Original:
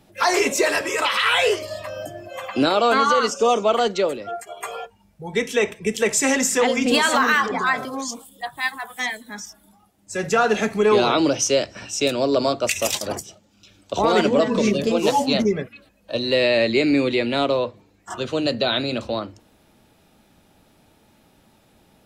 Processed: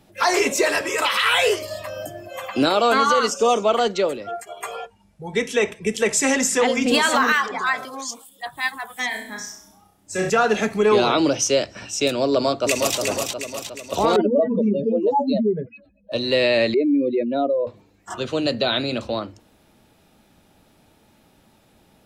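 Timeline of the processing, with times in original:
0.98–3.66 high shelf 11000 Hz +10.5 dB
4.74–6.75 steep low-pass 12000 Hz 48 dB/oct
7.32–8.46 low shelf 430 Hz -11.5 dB
9.08–10.3 flutter echo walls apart 5.5 m, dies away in 0.54 s
12.3–12.97 echo throw 0.36 s, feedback 55%, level -4.5 dB
14.16–16.12 spectral contrast raised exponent 2.4
16.74–17.67 spectral contrast raised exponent 2.4

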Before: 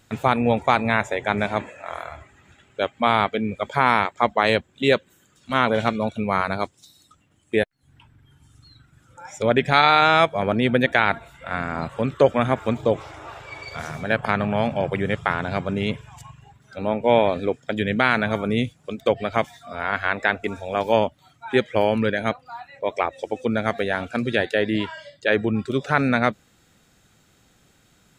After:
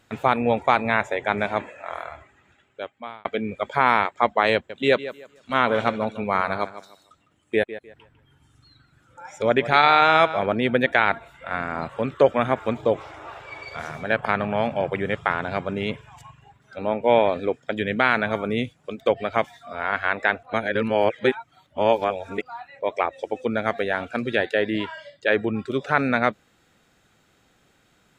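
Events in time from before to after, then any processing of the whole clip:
2.05–3.25 fade out
4.54–10.46 tape echo 0.153 s, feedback 27%, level -13 dB, low-pass 4800 Hz
20.43–22.42 reverse
whole clip: tone controls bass -6 dB, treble -7 dB

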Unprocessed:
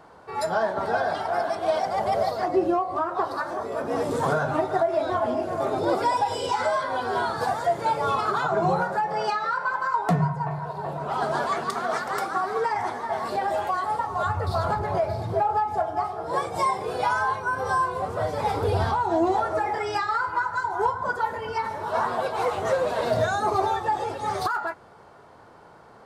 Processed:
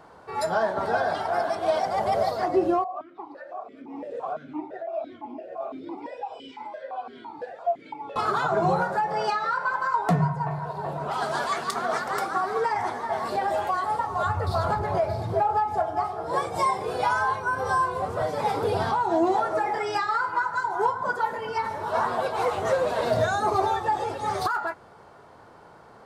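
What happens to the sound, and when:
2.84–8.16 vowel sequencer 5.9 Hz
11.11–11.74 tilt shelf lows -4.5 dB, about 1400 Hz
18.22–21.56 HPF 120 Hz 24 dB/oct

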